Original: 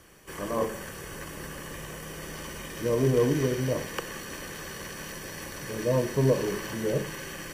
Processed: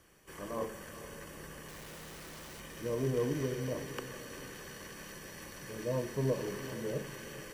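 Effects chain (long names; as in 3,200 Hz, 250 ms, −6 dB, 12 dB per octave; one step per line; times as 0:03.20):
0:01.68–0:02.60: comparator with hysteresis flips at −54 dBFS
feedback delay with all-pass diffusion 457 ms, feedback 40%, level −12.5 dB
level −9 dB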